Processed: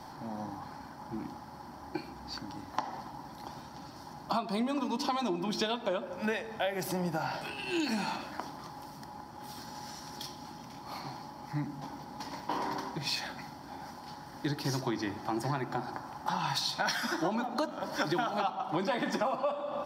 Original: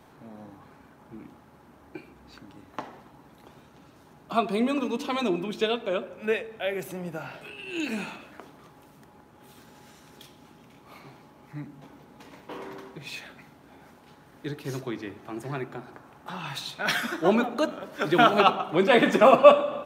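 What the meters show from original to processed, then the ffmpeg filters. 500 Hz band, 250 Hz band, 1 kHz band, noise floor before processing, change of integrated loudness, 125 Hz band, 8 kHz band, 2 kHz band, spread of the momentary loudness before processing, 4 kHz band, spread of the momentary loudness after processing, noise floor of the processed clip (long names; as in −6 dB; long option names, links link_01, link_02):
−12.0 dB, −5.0 dB, −6.0 dB, −55 dBFS, −11.0 dB, −1.0 dB, +1.5 dB, −7.0 dB, 23 LU, −3.0 dB, 14 LU, −48 dBFS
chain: -filter_complex "[0:a]asplit=2[link_01][link_02];[link_02]alimiter=limit=-13dB:level=0:latency=1:release=35,volume=-2.5dB[link_03];[link_01][link_03]amix=inputs=2:normalize=0,superequalizer=7b=0.447:9b=2.24:12b=0.562:14b=3.16,acompressor=threshold=-28dB:ratio=16"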